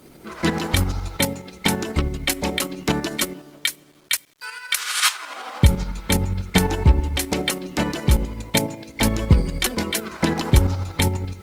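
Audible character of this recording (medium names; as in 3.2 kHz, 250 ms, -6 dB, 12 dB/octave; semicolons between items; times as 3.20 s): tremolo saw up 12 Hz, depth 55%; a quantiser's noise floor 10-bit, dither none; Opus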